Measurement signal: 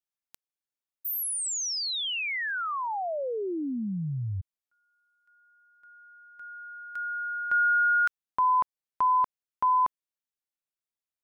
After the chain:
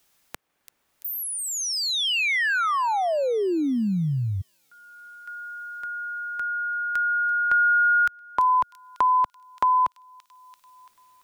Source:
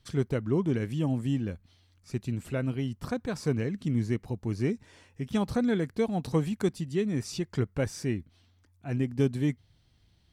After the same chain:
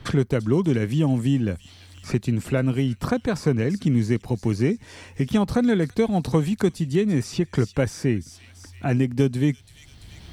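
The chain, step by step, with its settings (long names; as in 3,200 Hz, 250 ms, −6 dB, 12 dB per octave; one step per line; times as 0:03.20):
on a send: delay with a high-pass on its return 338 ms, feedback 36%, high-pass 3,700 Hz, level −12 dB
on the sum: multiband upward and downward compressor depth 70%
level +7 dB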